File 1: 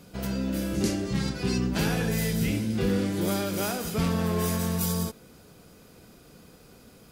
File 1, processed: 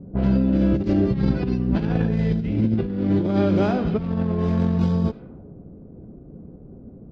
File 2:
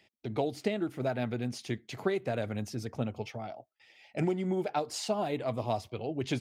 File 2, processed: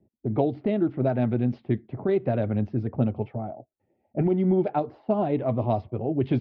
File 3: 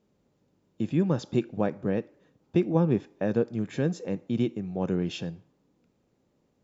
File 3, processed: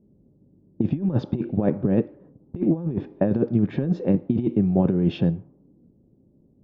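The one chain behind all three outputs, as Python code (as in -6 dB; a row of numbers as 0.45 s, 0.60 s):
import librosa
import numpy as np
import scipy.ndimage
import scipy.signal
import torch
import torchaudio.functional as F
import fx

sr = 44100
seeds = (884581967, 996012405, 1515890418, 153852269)

y = scipy.signal.sosfilt(scipy.signal.butter(4, 4200.0, 'lowpass', fs=sr, output='sos'), x)
y = fx.tilt_shelf(y, sr, db=8.5, hz=920.0)
y = fx.notch(y, sr, hz=470.0, q=12.0)
y = fx.env_lowpass(y, sr, base_hz=380.0, full_db=-19.5)
y = fx.low_shelf(y, sr, hz=210.0, db=-2.0)
y = fx.over_compress(y, sr, threshold_db=-23.0, ratio=-0.5)
y = F.gain(torch.from_numpy(y), 3.5).numpy()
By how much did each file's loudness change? +6.0 LU, +7.5 LU, +5.0 LU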